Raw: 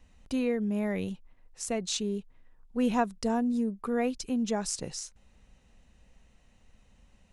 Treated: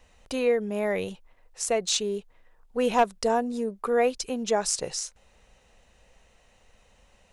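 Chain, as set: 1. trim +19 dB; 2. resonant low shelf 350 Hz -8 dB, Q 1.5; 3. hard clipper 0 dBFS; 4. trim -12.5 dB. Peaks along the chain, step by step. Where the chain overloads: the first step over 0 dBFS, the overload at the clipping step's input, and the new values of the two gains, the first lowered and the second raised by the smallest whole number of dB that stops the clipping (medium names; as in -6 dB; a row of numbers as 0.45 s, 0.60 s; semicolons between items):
+5.5 dBFS, +5.0 dBFS, 0.0 dBFS, -12.5 dBFS; step 1, 5.0 dB; step 1 +14 dB, step 4 -7.5 dB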